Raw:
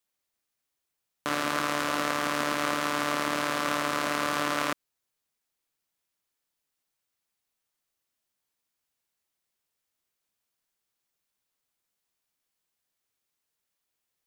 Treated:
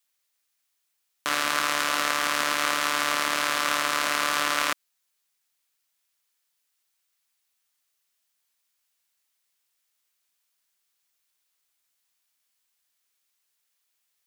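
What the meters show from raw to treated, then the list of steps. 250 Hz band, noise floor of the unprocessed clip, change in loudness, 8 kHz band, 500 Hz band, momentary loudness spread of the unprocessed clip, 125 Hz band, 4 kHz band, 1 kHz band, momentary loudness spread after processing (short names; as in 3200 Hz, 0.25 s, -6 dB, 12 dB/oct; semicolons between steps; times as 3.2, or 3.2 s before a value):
-5.5 dB, -84 dBFS, +4.0 dB, +7.5 dB, -2.0 dB, 3 LU, -7.0 dB, +7.0 dB, +2.5 dB, 3 LU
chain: tilt shelf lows -7.5 dB, about 760 Hz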